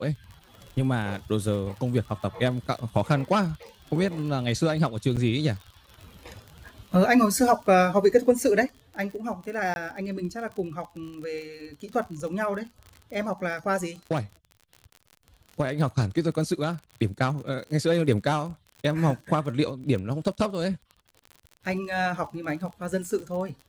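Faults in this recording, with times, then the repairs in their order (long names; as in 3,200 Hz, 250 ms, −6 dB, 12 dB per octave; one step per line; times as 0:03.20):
surface crackle 43 per second −35 dBFS
0:05.16–0:05.17: drop-out 7.2 ms
0:09.74–0:09.76: drop-out 21 ms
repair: click removal
repair the gap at 0:05.16, 7.2 ms
repair the gap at 0:09.74, 21 ms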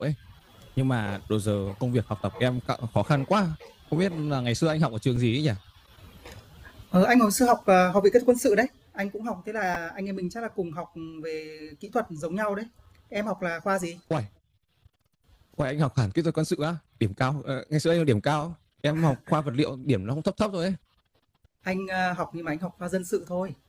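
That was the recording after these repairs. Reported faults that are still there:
none of them is left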